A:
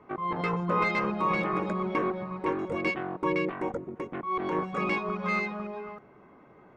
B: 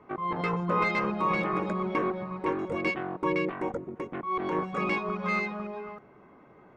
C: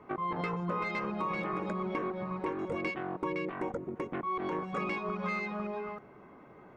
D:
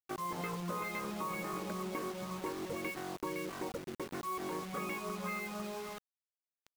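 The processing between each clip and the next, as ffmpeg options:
ffmpeg -i in.wav -af anull out.wav
ffmpeg -i in.wav -af "acompressor=threshold=-32dB:ratio=6,volume=1dB" out.wav
ffmpeg -i in.wav -af "acrusher=bits=6:mix=0:aa=0.000001,volume=-5dB" out.wav

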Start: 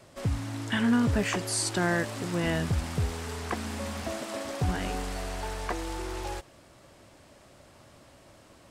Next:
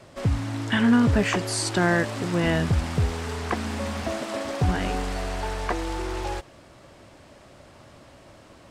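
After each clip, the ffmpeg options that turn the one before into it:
ffmpeg -i in.wav -af "highshelf=frequency=7900:gain=-10,volume=5.5dB" out.wav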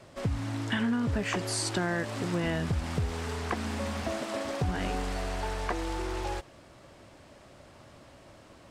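ffmpeg -i in.wav -af "acompressor=threshold=-22dB:ratio=6,volume=-3.5dB" out.wav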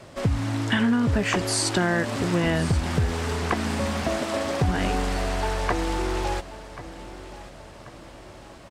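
ffmpeg -i in.wav -af "aecho=1:1:1086|2172|3258|4344:0.158|0.0682|0.0293|0.0126,volume=7dB" out.wav

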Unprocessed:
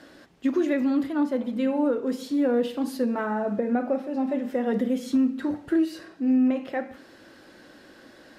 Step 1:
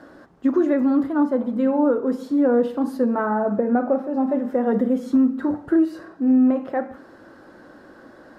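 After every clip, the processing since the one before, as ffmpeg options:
ffmpeg -i in.wav -af "highshelf=frequency=1800:width_type=q:width=1.5:gain=-10.5,volume=4.5dB" out.wav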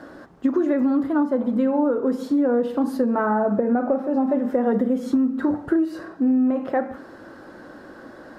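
ffmpeg -i in.wav -af "acompressor=threshold=-21dB:ratio=6,volume=4dB" out.wav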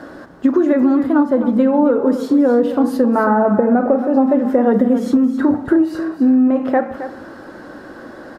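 ffmpeg -i in.wav -af "aecho=1:1:268:0.266,volume=6.5dB" out.wav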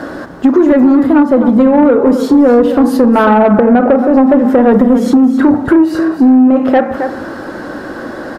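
ffmpeg -i in.wav -filter_complex "[0:a]asplit=2[link_01][link_02];[link_02]acompressor=threshold=-22dB:ratio=6,volume=-2.5dB[link_03];[link_01][link_03]amix=inputs=2:normalize=0,asoftclip=type=tanh:threshold=-7.5dB,volume=6.5dB" out.wav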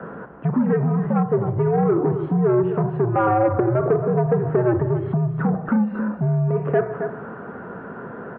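ffmpeg -i in.wav -filter_complex "[0:a]acrossover=split=290 2300:gain=0.251 1 0.0794[link_01][link_02][link_03];[link_01][link_02][link_03]amix=inputs=3:normalize=0,highpass=frequency=160:width_type=q:width=0.5412,highpass=frequency=160:width_type=q:width=1.307,lowpass=frequency=3100:width_type=q:width=0.5176,lowpass=frequency=3100:width_type=q:width=0.7071,lowpass=frequency=3100:width_type=q:width=1.932,afreqshift=-110,volume=-8.5dB" out.wav

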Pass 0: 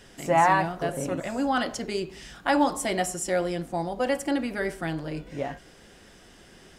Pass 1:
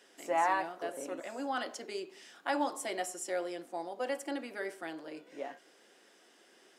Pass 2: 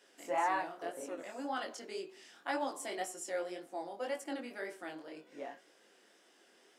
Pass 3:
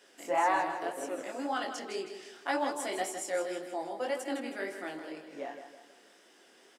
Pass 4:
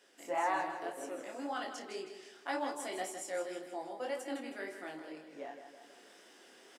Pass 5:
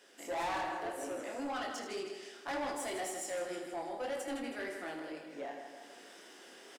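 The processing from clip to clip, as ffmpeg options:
ffmpeg -i in.wav -af "highpass=frequency=290:width=0.5412,highpass=frequency=290:width=1.3066,volume=-9dB" out.wav
ffmpeg -i in.wav -af "flanger=delay=18.5:depth=6.4:speed=1.9" out.wav
ffmpeg -i in.wav -af "aecho=1:1:160|320|480|640|800:0.355|0.156|0.0687|0.0302|0.0133,volume=4.5dB" out.wav
ffmpeg -i in.wav -filter_complex "[0:a]areverse,acompressor=mode=upward:threshold=-45dB:ratio=2.5,areverse,asplit=2[link_01][link_02];[link_02]adelay=32,volume=-11dB[link_03];[link_01][link_03]amix=inputs=2:normalize=0,volume=-5.5dB" out.wav
ffmpeg -i in.wav -af "asoftclip=type=tanh:threshold=-37.5dB,aecho=1:1:79:0.355,volume=4dB" out.wav

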